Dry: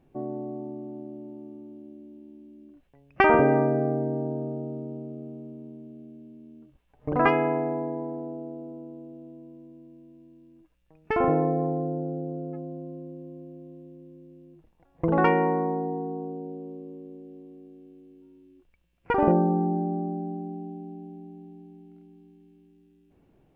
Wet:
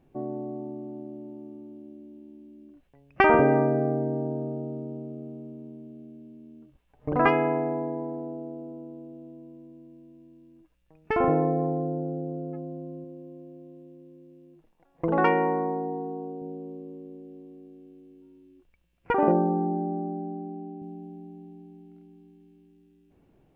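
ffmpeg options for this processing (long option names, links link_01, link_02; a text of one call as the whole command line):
ffmpeg -i in.wav -filter_complex "[0:a]asettb=1/sr,asplit=3[link_01][link_02][link_03];[link_01]atrim=end=13.044[link_04];[link_02]atrim=start=13.04:end=16.42,asetpts=PTS-STARTPTS,afade=type=in:duration=0.004:curve=qsin,afade=type=out:start_time=3.376:duration=0.004:curve=qsin,equalizer=frequency=61:width=0.57:gain=-12[link_05];[link_03]atrim=start=16.416[link_06];[link_04][link_05]acrossfade=duration=0.004:curve1=hsin:curve2=qsin[link_07];[link_07][link_06]acrossfade=duration=0.004:curve1=qsin:curve2=hsin,asettb=1/sr,asplit=3[link_08][link_09][link_10];[link_08]atrim=end=19.124[link_11];[link_09]atrim=start=19.12:end=20.82,asetpts=PTS-STARTPTS,afade=type=in:duration=0.004:curve=qsin,afade=type=out:start_time=1.696:duration=0.004:curve=qsin,highpass=190,lowpass=2900[link_12];[link_10]atrim=start=20.816[link_13];[link_11][link_12]acrossfade=duration=0.004:curve1=hsin:curve2=qsin[link_14];[link_14][link_13]acrossfade=duration=0.004:curve1=qsin:curve2=hsin" out.wav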